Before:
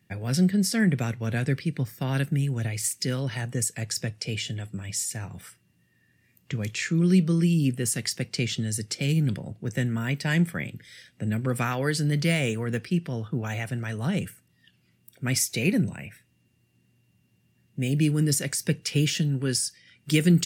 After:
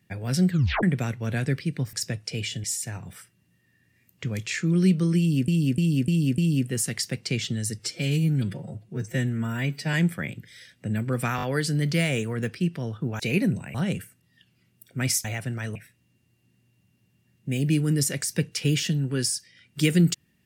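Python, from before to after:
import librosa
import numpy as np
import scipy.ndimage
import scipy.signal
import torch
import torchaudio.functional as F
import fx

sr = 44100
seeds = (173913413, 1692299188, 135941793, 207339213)

y = fx.edit(x, sr, fx.tape_stop(start_s=0.5, length_s=0.33),
    fx.cut(start_s=1.93, length_s=1.94),
    fx.cut(start_s=4.58, length_s=0.34),
    fx.repeat(start_s=7.46, length_s=0.3, count=5),
    fx.stretch_span(start_s=8.87, length_s=1.43, factor=1.5),
    fx.stutter(start_s=11.73, slice_s=0.02, count=4),
    fx.swap(start_s=13.5, length_s=0.51, other_s=15.51, other_length_s=0.55), tone=tone)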